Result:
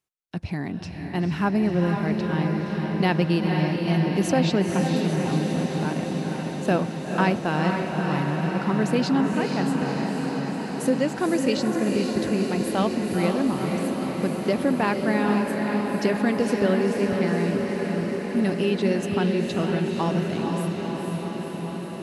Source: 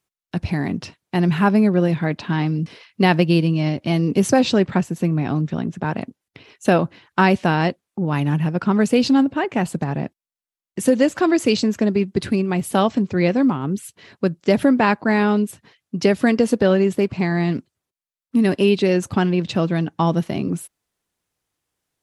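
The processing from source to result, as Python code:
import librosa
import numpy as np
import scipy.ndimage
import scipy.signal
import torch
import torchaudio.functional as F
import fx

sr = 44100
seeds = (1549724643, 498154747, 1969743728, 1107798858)

y = fx.echo_diffused(x, sr, ms=492, feedback_pct=77, wet_db=-4.0)
y = y * 10.0 ** (-7.0 / 20.0)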